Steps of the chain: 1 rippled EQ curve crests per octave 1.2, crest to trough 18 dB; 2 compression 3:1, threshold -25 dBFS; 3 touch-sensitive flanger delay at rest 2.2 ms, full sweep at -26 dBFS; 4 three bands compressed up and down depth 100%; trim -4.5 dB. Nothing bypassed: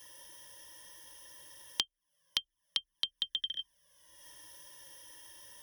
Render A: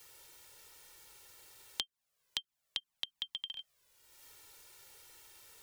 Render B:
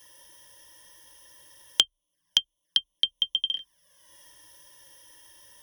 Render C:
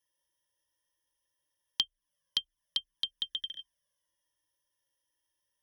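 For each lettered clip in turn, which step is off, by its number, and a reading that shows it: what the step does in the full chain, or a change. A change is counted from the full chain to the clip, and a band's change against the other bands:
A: 1, loudness change -7.5 LU; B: 2, mean gain reduction 6.0 dB; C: 4, crest factor change -2.5 dB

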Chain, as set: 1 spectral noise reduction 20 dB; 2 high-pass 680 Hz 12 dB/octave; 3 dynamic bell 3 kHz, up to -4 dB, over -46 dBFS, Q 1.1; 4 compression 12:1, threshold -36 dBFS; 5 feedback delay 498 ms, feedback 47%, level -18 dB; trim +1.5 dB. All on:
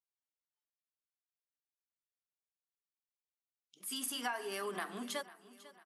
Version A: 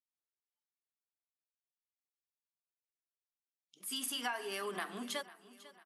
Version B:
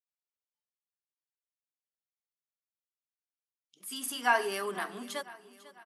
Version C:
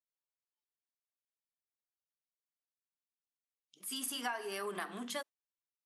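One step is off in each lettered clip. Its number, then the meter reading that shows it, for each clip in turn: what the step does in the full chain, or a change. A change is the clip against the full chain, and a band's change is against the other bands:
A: 3, 4 kHz band +2.5 dB; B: 4, mean gain reduction 3.5 dB; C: 5, echo-to-direct -17.0 dB to none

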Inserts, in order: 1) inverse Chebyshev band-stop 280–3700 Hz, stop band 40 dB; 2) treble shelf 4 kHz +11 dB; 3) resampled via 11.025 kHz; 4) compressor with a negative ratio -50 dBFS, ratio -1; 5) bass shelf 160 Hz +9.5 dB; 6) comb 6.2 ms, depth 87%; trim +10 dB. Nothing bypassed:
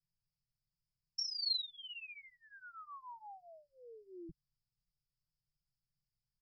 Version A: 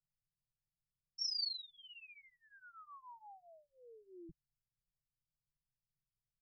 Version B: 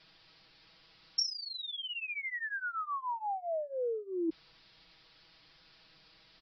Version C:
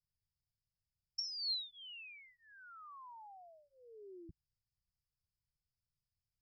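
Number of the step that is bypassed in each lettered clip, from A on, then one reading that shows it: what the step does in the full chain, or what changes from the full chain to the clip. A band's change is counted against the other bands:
2, 2 kHz band -2.5 dB; 1, 4 kHz band -15.0 dB; 6, loudness change -3.0 LU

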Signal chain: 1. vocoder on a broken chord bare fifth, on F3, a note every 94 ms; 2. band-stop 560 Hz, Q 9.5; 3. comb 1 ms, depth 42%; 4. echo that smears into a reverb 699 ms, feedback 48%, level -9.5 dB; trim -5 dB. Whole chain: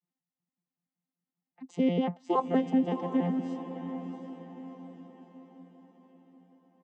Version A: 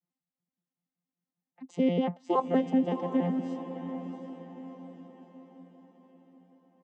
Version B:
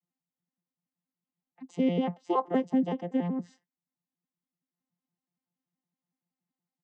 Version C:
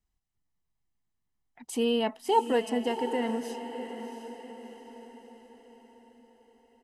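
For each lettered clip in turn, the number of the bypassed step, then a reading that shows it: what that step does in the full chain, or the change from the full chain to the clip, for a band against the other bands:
2, 500 Hz band +1.5 dB; 4, echo-to-direct -8.5 dB to none; 1, 250 Hz band -8.5 dB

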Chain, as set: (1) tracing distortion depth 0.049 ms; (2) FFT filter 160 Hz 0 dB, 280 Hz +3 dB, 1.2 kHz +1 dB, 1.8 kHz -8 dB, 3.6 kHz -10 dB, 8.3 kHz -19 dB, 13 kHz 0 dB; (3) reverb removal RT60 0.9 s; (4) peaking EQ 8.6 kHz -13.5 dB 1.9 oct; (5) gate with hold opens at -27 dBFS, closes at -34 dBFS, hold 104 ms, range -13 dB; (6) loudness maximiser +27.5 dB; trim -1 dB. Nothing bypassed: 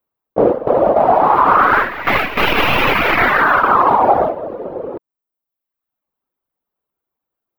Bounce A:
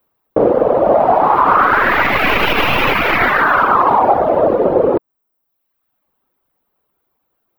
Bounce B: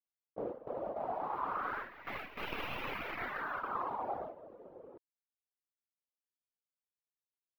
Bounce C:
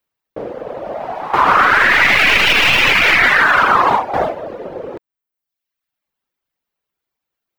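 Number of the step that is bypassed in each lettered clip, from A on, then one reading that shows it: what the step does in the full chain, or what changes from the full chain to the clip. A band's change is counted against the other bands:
5, momentary loudness spread change -11 LU; 6, crest factor change +6.5 dB; 2, momentary loudness spread change +5 LU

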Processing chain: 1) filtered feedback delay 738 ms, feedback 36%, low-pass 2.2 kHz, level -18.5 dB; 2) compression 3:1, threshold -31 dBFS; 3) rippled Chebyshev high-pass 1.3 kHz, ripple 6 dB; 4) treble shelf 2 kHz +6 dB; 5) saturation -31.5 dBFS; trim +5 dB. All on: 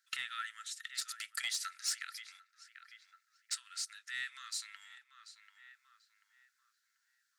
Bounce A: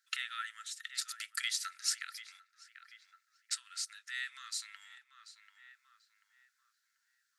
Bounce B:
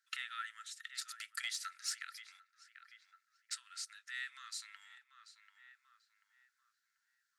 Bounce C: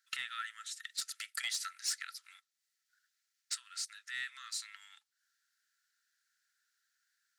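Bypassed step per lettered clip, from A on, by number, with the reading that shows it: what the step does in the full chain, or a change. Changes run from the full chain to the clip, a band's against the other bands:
5, distortion -16 dB; 4, 1 kHz band +2.5 dB; 1, momentary loudness spread change -10 LU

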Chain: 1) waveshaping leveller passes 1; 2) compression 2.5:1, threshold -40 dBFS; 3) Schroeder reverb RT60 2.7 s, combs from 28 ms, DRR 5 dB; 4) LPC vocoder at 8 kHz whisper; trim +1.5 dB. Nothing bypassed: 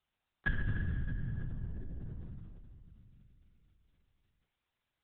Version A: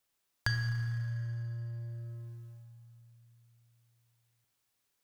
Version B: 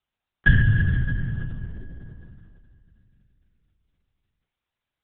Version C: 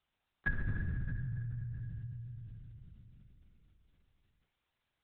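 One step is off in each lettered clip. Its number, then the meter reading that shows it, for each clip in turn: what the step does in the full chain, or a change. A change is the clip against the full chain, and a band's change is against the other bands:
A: 4, 250 Hz band -7.5 dB; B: 2, mean gain reduction 7.5 dB; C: 1, momentary loudness spread change -2 LU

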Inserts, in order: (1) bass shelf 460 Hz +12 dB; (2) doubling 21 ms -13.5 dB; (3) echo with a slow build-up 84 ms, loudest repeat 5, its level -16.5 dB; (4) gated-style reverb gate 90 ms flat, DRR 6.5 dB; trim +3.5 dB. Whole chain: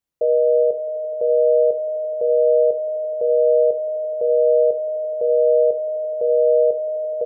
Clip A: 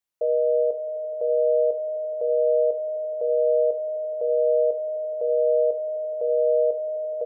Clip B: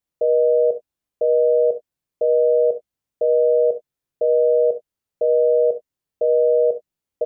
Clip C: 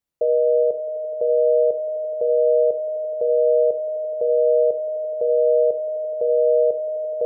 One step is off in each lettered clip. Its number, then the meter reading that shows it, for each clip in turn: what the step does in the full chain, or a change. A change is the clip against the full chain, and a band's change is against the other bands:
1, loudness change -5.0 LU; 3, echo-to-direct -3.0 dB to -6.5 dB; 2, loudness change -1.5 LU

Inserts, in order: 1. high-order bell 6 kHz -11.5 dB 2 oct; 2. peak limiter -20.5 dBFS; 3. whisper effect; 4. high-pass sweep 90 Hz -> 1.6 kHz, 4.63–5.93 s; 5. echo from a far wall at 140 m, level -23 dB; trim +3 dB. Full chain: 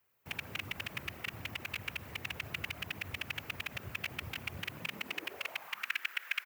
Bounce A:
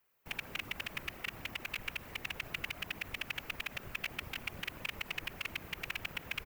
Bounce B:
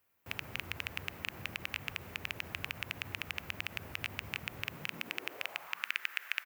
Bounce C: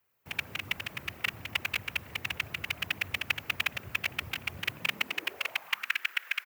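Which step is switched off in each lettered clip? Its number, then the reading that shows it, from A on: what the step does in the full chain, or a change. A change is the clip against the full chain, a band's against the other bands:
4, 125 Hz band -3.5 dB; 3, crest factor change +4.5 dB; 2, mean gain reduction 1.5 dB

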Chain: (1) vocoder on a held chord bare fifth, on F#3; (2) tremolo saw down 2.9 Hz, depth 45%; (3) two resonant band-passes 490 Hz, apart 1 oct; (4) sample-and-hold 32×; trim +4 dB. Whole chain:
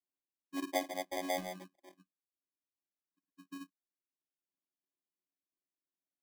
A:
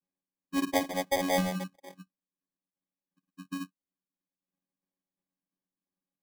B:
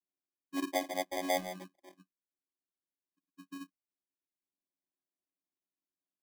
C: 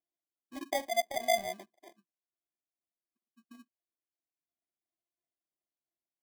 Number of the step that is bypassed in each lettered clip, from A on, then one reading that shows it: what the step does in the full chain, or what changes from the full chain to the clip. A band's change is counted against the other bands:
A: 3, 125 Hz band +10.0 dB; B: 2, momentary loudness spread change +2 LU; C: 1, 250 Hz band -11.0 dB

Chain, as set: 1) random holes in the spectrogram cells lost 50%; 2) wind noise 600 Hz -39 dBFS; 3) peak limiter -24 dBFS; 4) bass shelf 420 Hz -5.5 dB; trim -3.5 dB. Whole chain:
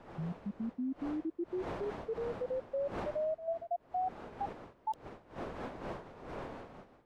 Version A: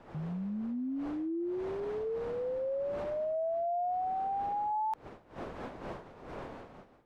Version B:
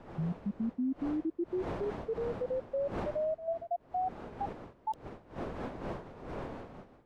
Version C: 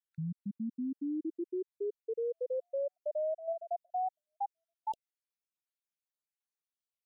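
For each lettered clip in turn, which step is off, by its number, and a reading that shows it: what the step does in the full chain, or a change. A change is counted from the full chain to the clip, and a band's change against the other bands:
1, 2 kHz band -4.0 dB; 4, 125 Hz band +3.0 dB; 2, momentary loudness spread change -3 LU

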